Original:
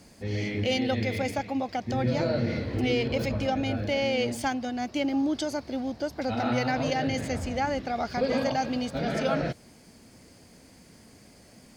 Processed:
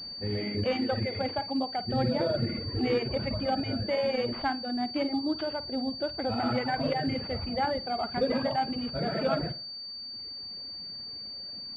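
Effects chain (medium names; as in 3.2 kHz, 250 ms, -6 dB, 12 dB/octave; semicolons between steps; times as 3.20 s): flutter echo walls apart 9.1 m, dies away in 0.41 s; reverb removal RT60 1.6 s; class-D stage that switches slowly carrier 4.6 kHz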